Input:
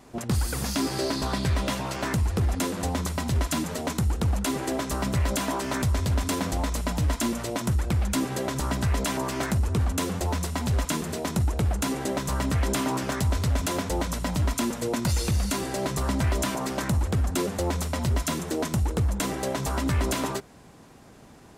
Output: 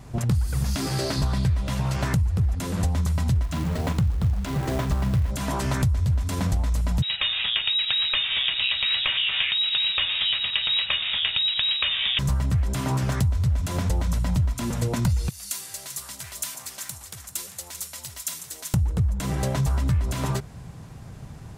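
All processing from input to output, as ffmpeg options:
-filter_complex "[0:a]asettb=1/sr,asplit=3[s0][s1][s2];[s0]atrim=end=0.764[s3];[s1]atrim=start=0.76:end=1.18,asetpts=PTS-STARTPTS,afade=t=in:d=0.004:c=qsin,afade=t=out:st=0.416:d=0.004:c=qsin,lowshelf=f=130:g=-11.5,bandreject=f=990:w=18[s4];[s2]atrim=start=1.176[s5];[s3][s4]acrossfade=d=0.004:c1=hsin:c2=qsin[s6];[s6][s5]acrossfade=d=0.004:c1=qsin:c2=hsin,asettb=1/sr,asplit=3[s7][s8][s9];[s7]atrim=end=3.434[s10];[s8]atrim=start=3.43:end=5.31,asetpts=PTS-STARTPTS,afade=t=in:d=0.004:c=qsin,afade=t=out:st=1.876:d=0.004:c=qsin,adynamicsmooth=sensitivity=3.5:basefreq=2900,acrusher=bits=3:mode=log:mix=0:aa=0.000001,asplit=2[s11][s12];[s12]adelay=41,volume=0.282[s13];[s11][s13]amix=inputs=2:normalize=0,atrim=end_sample=82908[s14];[s9]atrim=start=5.306[s15];[s10][s14]acrossfade=d=0.004:c1=hsin:c2=qsin[s16];[s16][s15]acrossfade=d=0.004:c1=qsin:c2=hsin,asettb=1/sr,asplit=3[s17][s18][s19];[s17]atrim=end=7.024[s20];[s18]atrim=start=7.02:end=12.19,asetpts=PTS-STARTPTS,afade=t=in:d=0.004:c=qsin,afade=t=out:st=5.166:d=0.004:c=qsin,equalizer=f=1200:w=0.68:g=12.5,aecho=1:1:786:0.158,atrim=end_sample=227997,lowpass=f=3300:t=q:w=0.5098,lowpass=f=3300:t=q:w=0.6013,lowpass=f=3300:t=q:w=0.9,lowpass=f=3300:t=q:w=2.563,afreqshift=-3900[s21];[s19]atrim=start=12.186[s22];[s20][s21]acrossfade=d=0.004:c1=hsin:c2=qsin[s23];[s23][s22]acrossfade=d=0.004:c1=qsin:c2=hsin,asettb=1/sr,asplit=3[s24][s25][s26];[s24]atrim=end=15.294[s27];[s25]atrim=start=15.29:end=18.74,asetpts=PTS-STARTPTS,afade=t=in:d=0.004:c=qsin,afade=t=out:st=3.446:d=0.004:c=qsin,aderivative,aecho=1:1:393:0.299,atrim=end_sample=152145[s28];[s26]atrim=start=18.736[s29];[s27][s28]acrossfade=d=0.004:c1=hsin:c2=qsin[s30];[s30][s29]acrossfade=d=0.004:c1=qsin:c2=hsin,lowshelf=f=190:t=q:w=1.5:g=11.5,acompressor=threshold=0.0708:ratio=6,volume=1.33"

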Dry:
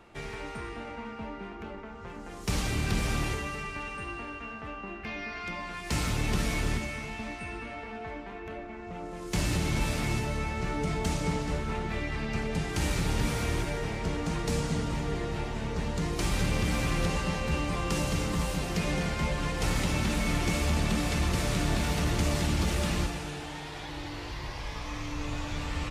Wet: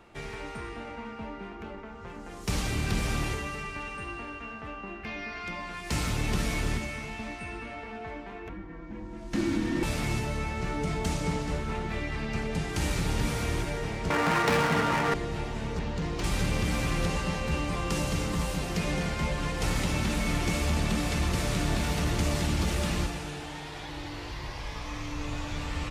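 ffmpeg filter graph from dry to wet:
-filter_complex "[0:a]asettb=1/sr,asplit=3[s0][s1][s2];[s0]atrim=end=8.494[s3];[s1]atrim=start=8.49:end=9.83,asetpts=PTS-STARTPTS,afade=t=in:d=0.004:c=qsin,afade=t=out:st=1.336:d=0.004:c=qsin,lowpass=f=2600:p=1,afreqshift=-390,asplit=2[s4][s5];[s5]adelay=15,volume=0.211[s6];[s4][s6]amix=inputs=2:normalize=0,atrim=end_sample=59094[s7];[s2]atrim=start=9.826[s8];[s3][s7]acrossfade=d=0.004:c1=hsin:c2=qsin[s9];[s9][s8]acrossfade=d=0.004:c1=qsin:c2=hsin,asettb=1/sr,asplit=3[s10][s11][s12];[s10]atrim=end=14.104[s13];[s11]atrim=start=14.1:end=15.14,asetpts=PTS-STARTPTS,afade=t=in:d=0.004:c=qsin,afade=t=out:st=1.036:d=0.004:c=qsin,equalizer=f=1400:w=0.42:g=15,adynamicsmooth=sensitivity=6:basefreq=690,highpass=99[s14];[s12]atrim=start=15.136[s15];[s13][s14]acrossfade=d=0.004:c1=hsin:c2=qsin[s16];[s16][s15]acrossfade=d=0.004:c1=qsin:c2=hsin,asettb=1/sr,asplit=3[s17][s18][s19];[s17]atrim=end=15.794[s20];[s18]atrim=start=15.79:end=16.24,asetpts=PTS-STARTPTS,afade=t=in:d=0.004:c=qsin,afade=t=out:st=0.446:d=0.004:c=qsin,lowpass=5300,volume=21.1,asoftclip=hard,volume=0.0473[s21];[s19]atrim=start=16.236[s22];[s20][s21]acrossfade=d=0.004:c1=hsin:c2=qsin[s23];[s23][s22]acrossfade=d=0.004:c1=qsin:c2=hsin"

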